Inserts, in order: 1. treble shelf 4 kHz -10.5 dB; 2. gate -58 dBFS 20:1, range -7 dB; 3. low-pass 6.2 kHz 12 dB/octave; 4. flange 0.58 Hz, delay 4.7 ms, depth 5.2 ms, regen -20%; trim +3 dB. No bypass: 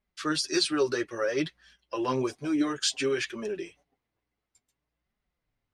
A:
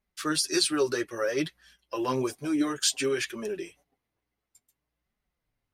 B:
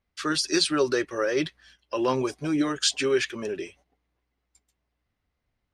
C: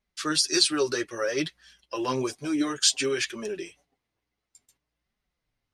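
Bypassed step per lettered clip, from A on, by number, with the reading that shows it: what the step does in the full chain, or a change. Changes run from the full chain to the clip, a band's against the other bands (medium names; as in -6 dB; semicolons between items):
3, 8 kHz band +4.5 dB; 4, loudness change +3.0 LU; 1, 8 kHz band +7.5 dB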